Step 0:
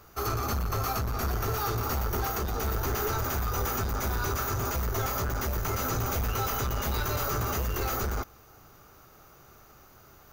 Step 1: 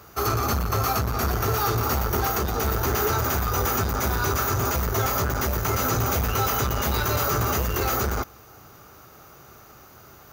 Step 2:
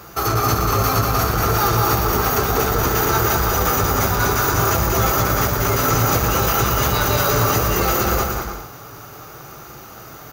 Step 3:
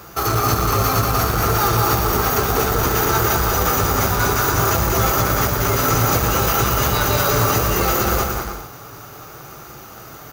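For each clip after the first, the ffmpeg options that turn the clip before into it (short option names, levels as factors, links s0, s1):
-af "highpass=61,volume=2.11"
-filter_complex "[0:a]asplit=2[s0][s1];[s1]alimiter=limit=0.0668:level=0:latency=1,volume=1.26[s2];[s0][s2]amix=inputs=2:normalize=0,flanger=delay=5.7:depth=1.6:regen=-38:speed=0.62:shape=triangular,aecho=1:1:190|304|372.4|413.4|438.1:0.631|0.398|0.251|0.158|0.1,volume=1.78"
-af "acrusher=bits=3:mode=log:mix=0:aa=0.000001"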